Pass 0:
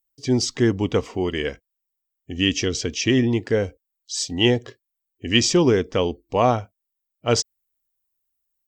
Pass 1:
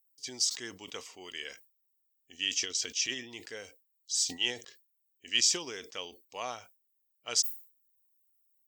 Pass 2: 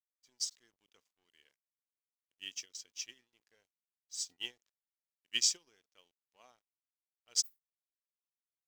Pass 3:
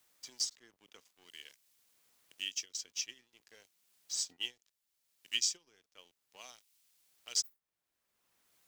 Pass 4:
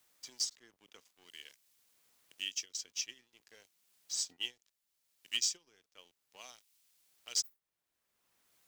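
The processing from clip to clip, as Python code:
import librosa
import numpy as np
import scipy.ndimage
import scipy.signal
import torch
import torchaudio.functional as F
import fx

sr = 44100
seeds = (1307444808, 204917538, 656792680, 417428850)

y1 = np.diff(x, prepend=0.0)
y1 = fx.sustainer(y1, sr, db_per_s=140.0)
y1 = y1 * 10.0 ** (-1.0 / 20.0)
y2 = np.sign(y1) * np.maximum(np.abs(y1) - 10.0 ** (-47.0 / 20.0), 0.0)
y2 = fx.upward_expand(y2, sr, threshold_db=-40.0, expansion=2.5)
y2 = y2 * 10.0 ** (-1.5 / 20.0)
y3 = fx.band_squash(y2, sr, depth_pct=70)
y3 = y3 * 10.0 ** (4.0 / 20.0)
y4 = np.clip(10.0 ** (23.5 / 20.0) * y3, -1.0, 1.0) / 10.0 ** (23.5 / 20.0)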